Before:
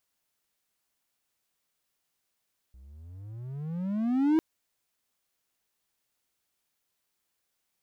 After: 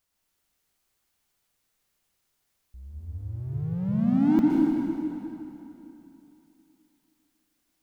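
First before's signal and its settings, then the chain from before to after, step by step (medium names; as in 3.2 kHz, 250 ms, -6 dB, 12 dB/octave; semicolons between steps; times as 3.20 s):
gliding synth tone triangle, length 1.65 s, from 61.1 Hz, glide +29 st, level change +30 dB, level -17 dB
bass shelf 110 Hz +11 dB; plate-style reverb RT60 3.1 s, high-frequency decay 0.85×, pre-delay 105 ms, DRR -2.5 dB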